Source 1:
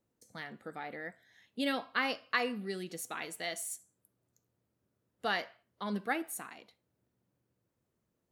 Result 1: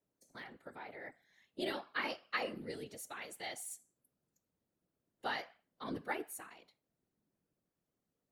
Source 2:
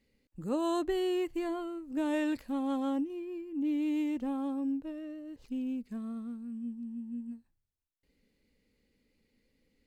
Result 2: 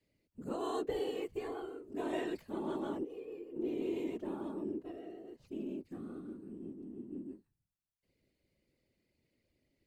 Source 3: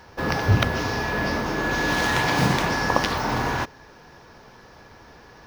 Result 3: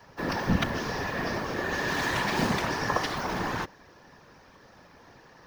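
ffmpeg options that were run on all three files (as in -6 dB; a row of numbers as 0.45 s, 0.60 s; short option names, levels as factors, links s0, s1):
-af "afreqshift=49,afftfilt=real='hypot(re,im)*cos(2*PI*random(0))':imag='hypot(re,im)*sin(2*PI*random(1))':win_size=512:overlap=0.75"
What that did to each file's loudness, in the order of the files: -6.0 LU, -6.0 LU, -6.0 LU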